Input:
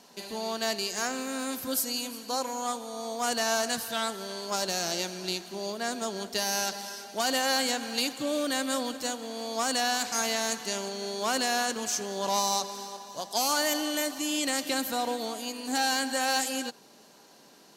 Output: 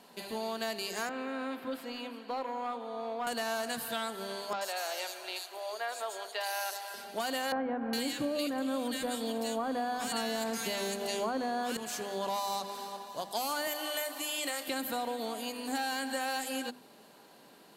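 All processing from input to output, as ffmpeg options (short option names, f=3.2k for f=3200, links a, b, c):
-filter_complex "[0:a]asettb=1/sr,asplit=3[a][b][c];[a]atrim=end=1.094[d];[b]atrim=start=1.09:end=3.27,asetpts=PTS-STARTPTS,afade=t=in:d=0.004:c=qsin,afade=t=out:st=2.176:d=0.004:c=qsin,highpass=f=99:p=1,asoftclip=type=hard:threshold=-27.5dB,acrossover=split=200 3600:gain=0.224 1 0.0708[e][f][g];[e][f][g]amix=inputs=3:normalize=0[h];[c]atrim=start=3.266[i];[d][h]acrossfade=d=0.004:c1=hsin:c2=qsin[j];[j][i]acrossfade=d=0.004:c1=qsin:c2=hsin,asettb=1/sr,asplit=3[k][l][m];[k]atrim=end=4.534[n];[l]atrim=start=4.53:end=6.94,asetpts=PTS-STARTPTS,afade=t=in:d=0.004:c=qsin,afade=t=out:st=2.406:d=0.004:c=qsin,highpass=f=530:w=0.5412,highpass=f=530:w=1.3066,acrossover=split=4100[o][p];[p]adelay=80[q];[o][q]amix=inputs=2:normalize=0,atrim=end_sample=106281[r];[m]atrim=start=6.936[s];[n][r]acrossfade=d=0.004:c1=hsin:c2=qsin[t];[t][s]acrossfade=d=0.004:c1=qsin:c2=hsin,asettb=1/sr,asplit=3[u][v][w];[u]atrim=end=7.524[x];[v]atrim=start=7.52:end=11.77,asetpts=PTS-STARTPTS,afade=t=in:d=0.004:c=qsin,afade=t=out:st=4.246:d=0.004:c=qsin,lowshelf=f=470:g=7,acontrast=33,acrossover=split=1700[y][z];[z]adelay=410[aa];[y][aa]amix=inputs=2:normalize=0,atrim=end_sample=187425[ab];[w]atrim=start=11.766[ac];[x][ab]acrossfade=d=0.004:c1=hsin:c2=qsin[ad];[ad][ac]acrossfade=d=0.004:c1=qsin:c2=hsin,asettb=1/sr,asplit=3[ae][af][ag];[ae]atrim=end=13.674[ah];[af]atrim=start=13.67:end=14.68,asetpts=PTS-STARTPTS,afade=t=in:d=0.004:c=qsin,afade=t=out:st=1.006:d=0.004:c=qsin,highpass=420,highshelf=f=12k:g=6.5,asplit=2[ai][aj];[aj]adelay=32,volume=-11dB[ak];[ai][ak]amix=inputs=2:normalize=0,atrim=end_sample=44541[al];[ag]atrim=start=14.676[am];[ah][al]acrossfade=d=0.004:c1=hsin:c2=qsin[an];[an][am]acrossfade=d=0.004:c1=qsin:c2=hsin,equalizer=f=5.9k:w=2.2:g=-12.5,bandreject=f=50:t=h:w=6,bandreject=f=100:t=h:w=6,bandreject=f=150:t=h:w=6,bandreject=f=200:t=h:w=6,bandreject=f=250:t=h:w=6,bandreject=f=300:t=h:w=6,bandreject=f=350:t=h:w=6,bandreject=f=400:t=h:w=6,acompressor=threshold=-31dB:ratio=6"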